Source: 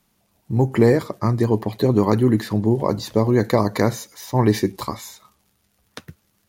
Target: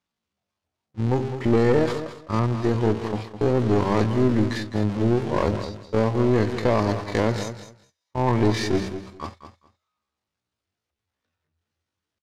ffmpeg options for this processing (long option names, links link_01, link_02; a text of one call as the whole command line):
ffmpeg -i in.wav -af "aeval=exprs='val(0)+0.5*0.0668*sgn(val(0))':channel_layout=same,lowpass=5500,bandreject=frequency=66.58:width_type=h:width=4,bandreject=frequency=133.16:width_type=h:width=4,bandreject=frequency=199.74:width_type=h:width=4,bandreject=frequency=266.32:width_type=h:width=4,bandreject=frequency=332.9:width_type=h:width=4,bandreject=frequency=399.48:width_type=h:width=4,bandreject=frequency=466.06:width_type=h:width=4,bandreject=frequency=532.64:width_type=h:width=4,bandreject=frequency=599.22:width_type=h:width=4,bandreject=frequency=665.8:width_type=h:width=4,bandreject=frequency=732.38:width_type=h:width=4,bandreject=frequency=798.96:width_type=h:width=4,bandreject=frequency=865.54:width_type=h:width=4,bandreject=frequency=932.12:width_type=h:width=4,bandreject=frequency=998.7:width_type=h:width=4,agate=range=-48dB:threshold=-21dB:ratio=16:detection=peak,lowshelf=frequency=120:gain=-11,aeval=exprs='(tanh(4.47*val(0)+0.6)-tanh(0.6))/4.47':channel_layout=same,atempo=0.53,equalizer=frequency=84:width_type=o:width=0.32:gain=13.5,aecho=1:1:208|416:0.282|0.0507" out.wav